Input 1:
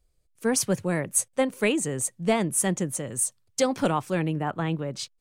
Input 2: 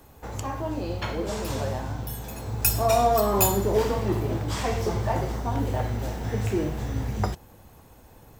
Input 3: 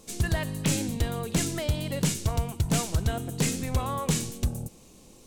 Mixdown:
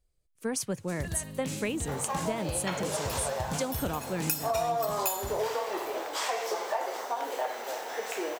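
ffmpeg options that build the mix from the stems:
-filter_complex "[0:a]volume=0.531[s0];[1:a]highpass=f=490:w=0.5412,highpass=f=490:w=1.3066,adelay=1650,volume=1.33[s1];[2:a]highpass=43,adelay=800,volume=0.355,asplit=2[s2][s3];[s3]volume=0.316,aecho=0:1:72:1[s4];[s0][s1][s2][s4]amix=inputs=4:normalize=0,acompressor=threshold=0.0447:ratio=5"

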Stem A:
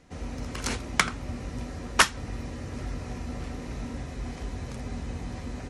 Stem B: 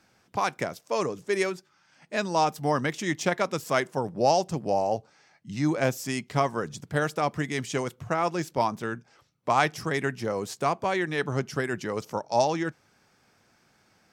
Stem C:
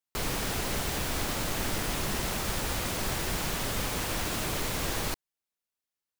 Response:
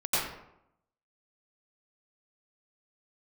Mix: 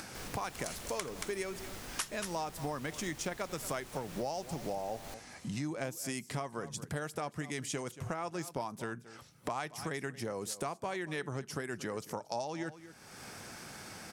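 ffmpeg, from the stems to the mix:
-filter_complex "[0:a]aemphasis=mode=production:type=riaa,volume=0.2,asplit=2[s0][s1];[s1]volume=0.376[s2];[1:a]equalizer=f=10000:t=o:w=0.72:g=10.5,acompressor=mode=upward:threshold=0.0562:ratio=2.5,volume=0.562,asplit=2[s3][s4];[s4]volume=0.112[s5];[2:a]volume=0.178[s6];[s2][s5]amix=inputs=2:normalize=0,aecho=0:1:228:1[s7];[s0][s3][s6][s7]amix=inputs=4:normalize=0,acompressor=threshold=0.02:ratio=6"

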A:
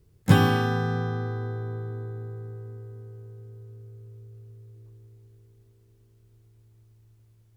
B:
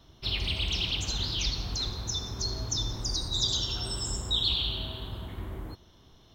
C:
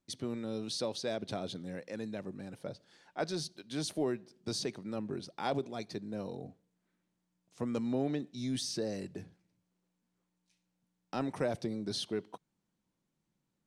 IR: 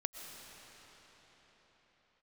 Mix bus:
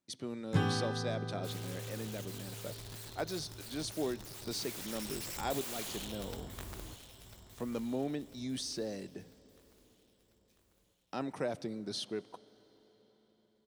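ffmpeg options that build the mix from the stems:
-filter_complex "[0:a]lowpass=8200,adelay=250,volume=0.237[s0];[1:a]bandreject=f=2600:w=12,aeval=exprs='(mod(28.2*val(0)+1,2)-1)/28.2':c=same,adelay=1200,volume=0.376,afade=t=in:st=4.36:d=0.8:silence=0.446684,asplit=2[s1][s2];[s2]volume=0.266[s3];[2:a]highpass=f=150:p=1,volume=0.708,asplit=2[s4][s5];[s5]volume=0.158[s6];[3:a]atrim=start_sample=2205[s7];[s6][s7]afir=irnorm=-1:irlink=0[s8];[s3]aecho=0:1:996|1992|2988|3984|4980|5976|6972:1|0.5|0.25|0.125|0.0625|0.0312|0.0156[s9];[s0][s1][s4][s8][s9]amix=inputs=5:normalize=0"

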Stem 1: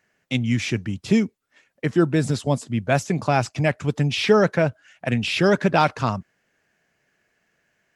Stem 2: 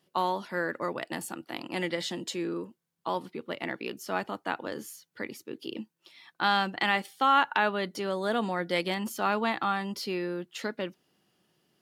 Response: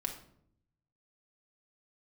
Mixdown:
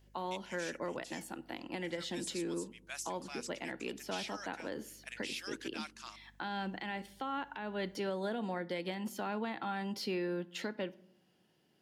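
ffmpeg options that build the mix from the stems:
-filter_complex "[0:a]highpass=850,aderivative,aeval=exprs='val(0)+0.00126*(sin(2*PI*50*n/s)+sin(2*PI*2*50*n/s)/2+sin(2*PI*3*50*n/s)/3+sin(2*PI*4*50*n/s)/4+sin(2*PI*5*50*n/s)/5)':c=same,volume=0.562[s0];[1:a]highshelf=f=4900:g=-6.5,bandreject=f=1200:w=6,acrossover=split=410[s1][s2];[s2]acompressor=threshold=0.0316:ratio=6[s3];[s1][s3]amix=inputs=2:normalize=0,volume=0.75,asplit=2[s4][s5];[s5]volume=0.266[s6];[2:a]atrim=start_sample=2205[s7];[s6][s7]afir=irnorm=-1:irlink=0[s8];[s0][s4][s8]amix=inputs=3:normalize=0,alimiter=level_in=1.58:limit=0.0631:level=0:latency=1:release=449,volume=0.631"

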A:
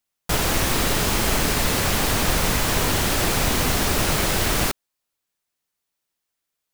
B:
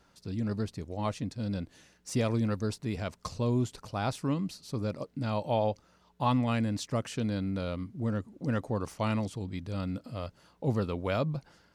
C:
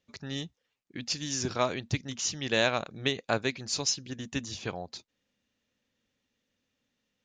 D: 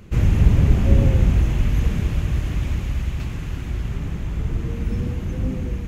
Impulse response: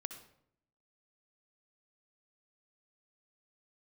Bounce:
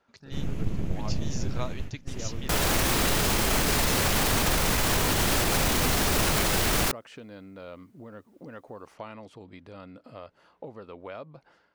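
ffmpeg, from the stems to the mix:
-filter_complex "[0:a]adelay=2200,volume=1.26[s0];[1:a]acompressor=threshold=0.0141:ratio=10,bass=f=250:g=-14,treble=f=4000:g=-14,dynaudnorm=f=180:g=5:m=2.24,volume=0.631,asplit=2[s1][s2];[2:a]volume=0.398[s3];[3:a]acrossover=split=210|3000[s4][s5][s6];[s5]acompressor=threshold=0.0316:ratio=6[s7];[s4][s7][s6]amix=inputs=3:normalize=0,aeval=exprs='abs(val(0))':c=same,adelay=200,volume=0.266[s8];[s2]apad=whole_len=268114[s9];[s8][s9]sidechaingate=range=0.0891:threshold=0.00126:ratio=16:detection=peak[s10];[s0][s1][s3][s10]amix=inputs=4:normalize=0,alimiter=limit=0.178:level=0:latency=1:release=27"

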